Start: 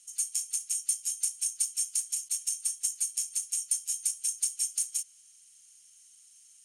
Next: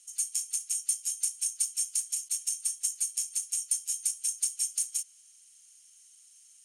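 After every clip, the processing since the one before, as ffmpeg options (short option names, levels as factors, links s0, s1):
-af "highpass=220"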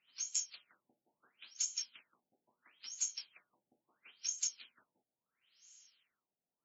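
-af "bandreject=f=287.2:t=h:w=4,bandreject=f=574.4:t=h:w=4,bandreject=f=861.6:t=h:w=4,bandreject=f=1148.8:t=h:w=4,bandreject=f=1436:t=h:w=4,bandreject=f=1723.2:t=h:w=4,bandreject=f=2010.4:t=h:w=4,bandreject=f=2297.6:t=h:w=4,bandreject=f=2584.8:t=h:w=4,bandreject=f=2872:t=h:w=4,bandreject=f=3159.2:t=h:w=4,bandreject=f=3446.4:t=h:w=4,bandreject=f=3733.6:t=h:w=4,bandreject=f=4020.8:t=h:w=4,bandreject=f=4308:t=h:w=4,bandreject=f=4595.2:t=h:w=4,bandreject=f=4882.4:t=h:w=4,bandreject=f=5169.6:t=h:w=4,bandreject=f=5456.8:t=h:w=4,bandreject=f=5744:t=h:w=4,bandreject=f=6031.2:t=h:w=4,bandreject=f=6318.4:t=h:w=4,bandreject=f=6605.6:t=h:w=4,bandreject=f=6892.8:t=h:w=4,bandreject=f=7180:t=h:w=4,bandreject=f=7467.2:t=h:w=4,bandreject=f=7754.4:t=h:w=4,bandreject=f=8041.6:t=h:w=4,afftfilt=real='re*lt(b*sr/1024,840*pow(7700/840,0.5+0.5*sin(2*PI*0.74*pts/sr)))':imag='im*lt(b*sr/1024,840*pow(7700/840,0.5+0.5*sin(2*PI*0.74*pts/sr)))':win_size=1024:overlap=0.75"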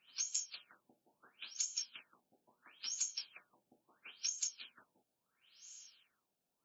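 -af "acompressor=threshold=0.00794:ratio=6,bandreject=f=2000:w=6.4,volume=2.11"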